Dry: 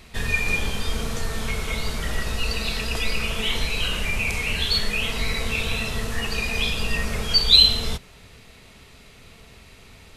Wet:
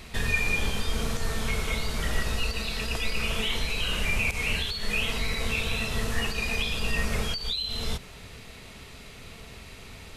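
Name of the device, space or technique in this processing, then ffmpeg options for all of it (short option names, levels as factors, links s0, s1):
de-esser from a sidechain: -filter_complex "[0:a]asplit=2[s0][s1];[s1]highpass=f=4500:w=0.5412,highpass=f=4500:w=1.3066,apad=whole_len=448247[s2];[s0][s2]sidechaincompress=threshold=0.00891:ratio=4:attack=1.9:release=85,volume=1.41"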